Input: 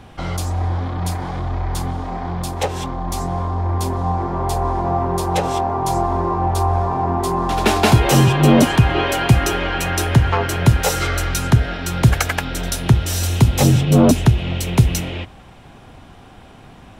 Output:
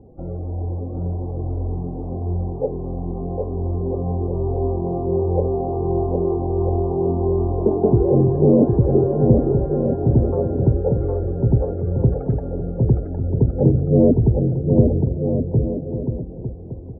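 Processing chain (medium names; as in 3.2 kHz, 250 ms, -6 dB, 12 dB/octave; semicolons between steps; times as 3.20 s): loudest bins only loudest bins 32; four-pole ladder low-pass 540 Hz, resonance 55%; bouncing-ball echo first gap 760 ms, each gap 0.7×, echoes 5; trim +5 dB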